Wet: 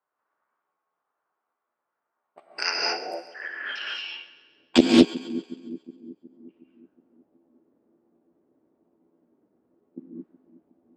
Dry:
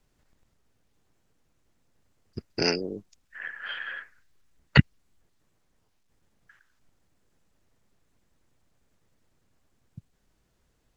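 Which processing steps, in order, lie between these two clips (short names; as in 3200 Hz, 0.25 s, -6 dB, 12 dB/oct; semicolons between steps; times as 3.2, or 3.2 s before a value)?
trilling pitch shifter +9 st, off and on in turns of 0.417 s; non-linear reverb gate 0.25 s rising, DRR -1.5 dB; low-pass opened by the level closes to 640 Hz, open at -27.5 dBFS; in parallel at -2 dB: compressor, threshold -41 dBFS, peak gain reduction 27 dB; on the sum: high-pass sweep 1200 Hz -> 290 Hz, 2.64–3.68; on a send: split-band echo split 400 Hz, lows 0.366 s, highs 0.136 s, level -15.5 dB; on the sum: Doppler distortion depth 0.2 ms; gain -2 dB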